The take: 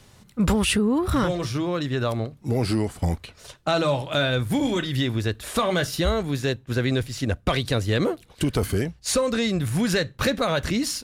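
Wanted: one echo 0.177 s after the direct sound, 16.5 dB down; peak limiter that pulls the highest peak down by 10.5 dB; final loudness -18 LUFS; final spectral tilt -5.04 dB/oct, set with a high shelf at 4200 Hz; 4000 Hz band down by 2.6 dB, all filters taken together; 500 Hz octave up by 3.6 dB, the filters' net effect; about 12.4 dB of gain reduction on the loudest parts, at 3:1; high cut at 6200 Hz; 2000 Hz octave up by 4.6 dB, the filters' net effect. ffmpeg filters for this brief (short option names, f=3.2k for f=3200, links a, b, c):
-af "lowpass=6.2k,equalizer=f=500:t=o:g=4,equalizer=f=2k:t=o:g=7.5,equalizer=f=4k:t=o:g=-3.5,highshelf=f=4.2k:g=-3.5,acompressor=threshold=-33dB:ratio=3,alimiter=level_in=2.5dB:limit=-24dB:level=0:latency=1,volume=-2.5dB,aecho=1:1:177:0.15,volume=18dB"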